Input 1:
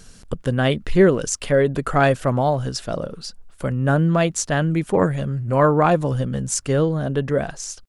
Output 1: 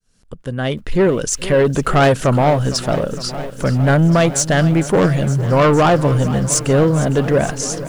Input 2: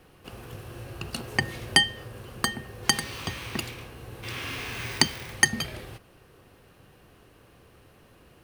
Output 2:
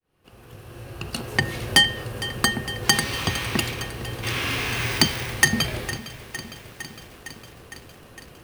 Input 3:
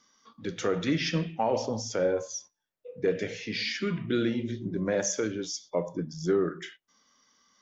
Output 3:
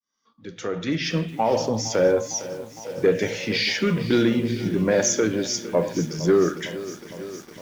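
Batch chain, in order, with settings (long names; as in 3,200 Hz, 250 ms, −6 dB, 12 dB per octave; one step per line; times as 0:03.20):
fade in at the beginning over 1.92 s
soft clipping −16.5 dBFS
feedback echo at a low word length 458 ms, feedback 80%, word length 8 bits, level −15 dB
level +8.5 dB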